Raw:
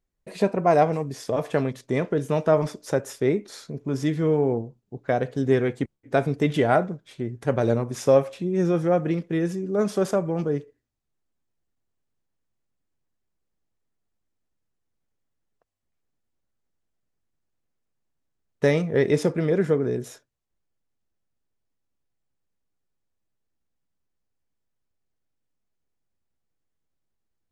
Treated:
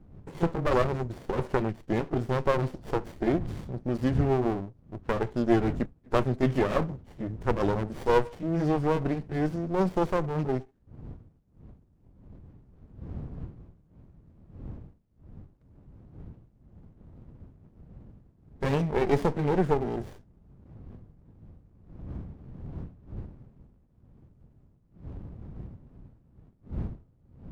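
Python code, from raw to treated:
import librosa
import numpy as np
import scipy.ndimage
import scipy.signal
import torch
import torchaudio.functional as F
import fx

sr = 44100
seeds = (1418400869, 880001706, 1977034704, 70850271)

y = fx.pitch_glide(x, sr, semitones=-3.0, runs='ending unshifted')
y = fx.dmg_wind(y, sr, seeds[0], corner_hz=150.0, level_db=-43.0)
y = fx.running_max(y, sr, window=33)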